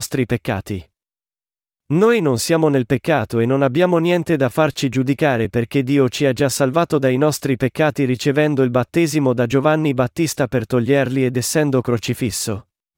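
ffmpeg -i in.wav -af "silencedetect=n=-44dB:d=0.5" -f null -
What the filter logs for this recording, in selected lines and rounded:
silence_start: 0.85
silence_end: 1.90 | silence_duration: 1.05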